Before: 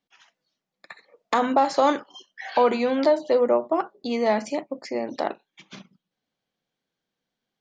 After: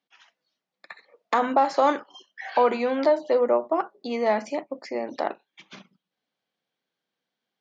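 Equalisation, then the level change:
band-pass filter 130–5,400 Hz
low-shelf EQ 350 Hz −6.5 dB
dynamic equaliser 3,700 Hz, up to −5 dB, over −48 dBFS, Q 1.3
+1.0 dB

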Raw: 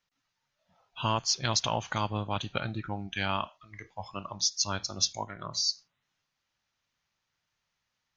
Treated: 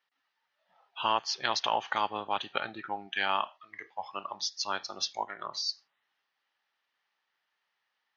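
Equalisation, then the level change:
loudspeaker in its box 350–5,000 Hz, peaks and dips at 400 Hz +4 dB, 820 Hz +7 dB, 1,200 Hz +4 dB, 1,800 Hz +8 dB, 3,000 Hz +4 dB
−2.0 dB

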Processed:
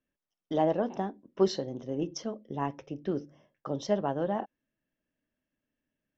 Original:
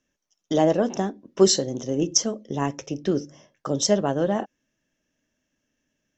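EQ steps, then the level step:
high-frequency loss of the air 280 metres
dynamic equaliser 4,600 Hz, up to +4 dB, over −45 dBFS, Q 0.71
dynamic equaliser 880 Hz, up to +6 dB, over −40 dBFS, Q 1.9
−8.0 dB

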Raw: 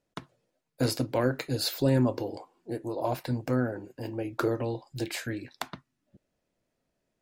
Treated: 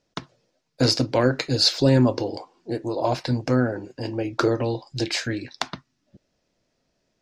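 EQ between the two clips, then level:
low-pass with resonance 5,500 Hz, resonance Q 2.4
+6.5 dB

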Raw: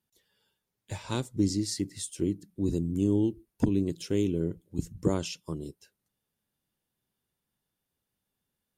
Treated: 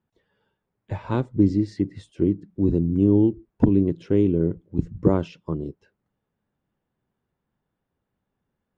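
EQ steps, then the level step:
low-pass filter 1,500 Hz 12 dB per octave
+8.0 dB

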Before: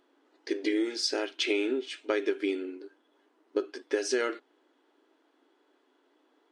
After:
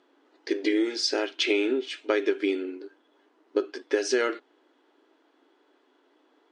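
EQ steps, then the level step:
high-pass filter 170 Hz
low-pass filter 7,000 Hz 12 dB per octave
+4.0 dB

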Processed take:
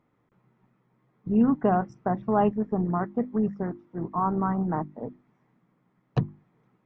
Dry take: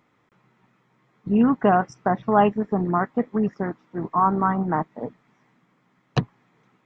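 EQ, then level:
spectral tilt −1.5 dB per octave
tilt shelving filter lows +3.5 dB, about 1,400 Hz
mains-hum notches 50/100/150/200/250/300/350 Hz
−8.5 dB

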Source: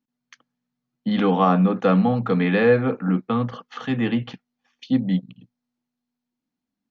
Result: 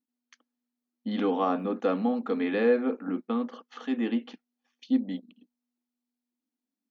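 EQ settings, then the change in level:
linear-phase brick-wall high-pass 210 Hz
tilt shelving filter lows +5 dB, about 630 Hz
high-shelf EQ 3,400 Hz +7.5 dB
−7.5 dB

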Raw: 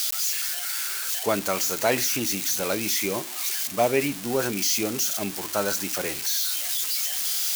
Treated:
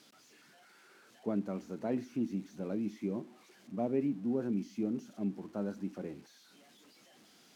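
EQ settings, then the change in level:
resonant band-pass 220 Hz, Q 2.3
0.0 dB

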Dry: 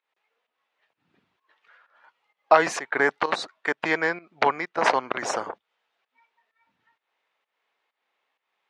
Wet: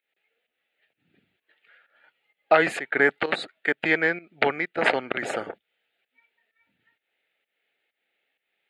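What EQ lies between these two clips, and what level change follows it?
dynamic equaliser 1,100 Hz, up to +7 dB, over −35 dBFS, Q 2.1
phaser with its sweep stopped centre 2,500 Hz, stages 4
+3.5 dB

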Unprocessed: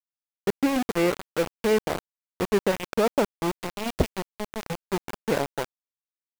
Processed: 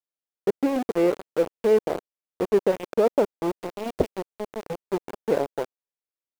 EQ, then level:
parametric band 460 Hz +12.5 dB 2 octaves
−8.5 dB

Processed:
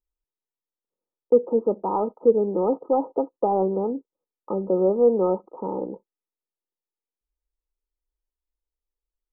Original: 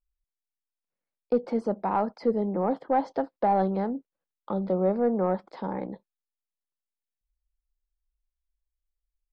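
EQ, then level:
Chebyshev low-pass with heavy ripple 1,300 Hz, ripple 9 dB
parametric band 480 Hz +11 dB 0.67 octaves
+3.5 dB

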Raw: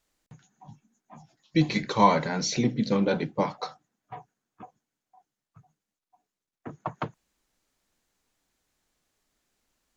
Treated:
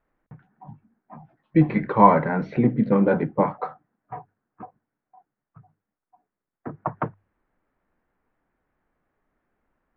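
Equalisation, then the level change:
low-pass filter 1,800 Hz 24 dB per octave
mains-hum notches 50/100 Hz
+5.5 dB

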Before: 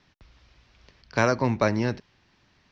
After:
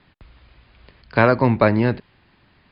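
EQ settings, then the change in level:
linear-phase brick-wall low-pass 5,100 Hz
high-frequency loss of the air 150 metres
+7.5 dB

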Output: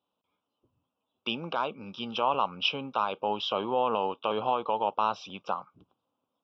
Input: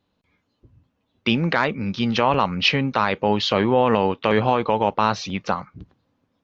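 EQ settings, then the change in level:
Savitzky-Golay smoothing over 25 samples
high-pass filter 1,500 Hz 6 dB per octave
Butterworth band-reject 1,900 Hz, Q 1.1
0.0 dB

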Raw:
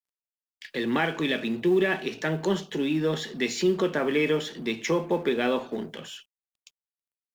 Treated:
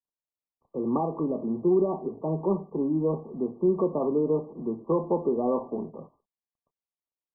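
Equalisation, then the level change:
linear-phase brick-wall low-pass 1,200 Hz
0.0 dB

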